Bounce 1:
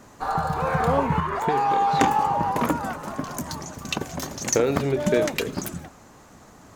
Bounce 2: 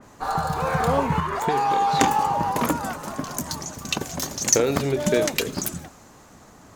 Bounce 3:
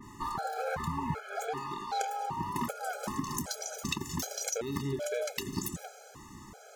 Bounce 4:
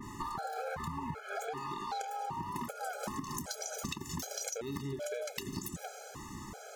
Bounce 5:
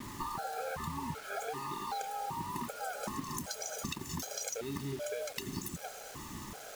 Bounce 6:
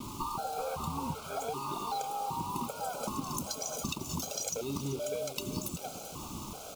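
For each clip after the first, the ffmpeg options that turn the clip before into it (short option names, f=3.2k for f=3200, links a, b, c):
-af "adynamicequalizer=threshold=0.00708:dfrequency=3200:dqfactor=0.7:tfrequency=3200:tqfactor=0.7:attack=5:release=100:ratio=0.375:range=3.5:mode=boostabove:tftype=highshelf"
-af "acompressor=threshold=-30dB:ratio=6,afftfilt=real='re*gt(sin(2*PI*1.3*pts/sr)*(1-2*mod(floor(b*sr/1024/430),2)),0)':imag='im*gt(sin(2*PI*1.3*pts/sr)*(1-2*mod(floor(b*sr/1024/430),2)),0)':win_size=1024:overlap=0.75,volume=1.5dB"
-af "acompressor=threshold=-40dB:ratio=6,volume=4dB"
-af "acrusher=bits=7:mix=0:aa=0.000001"
-af "asuperstop=centerf=1800:order=4:qfactor=1.7,aecho=1:1:387:0.211,volume=3dB"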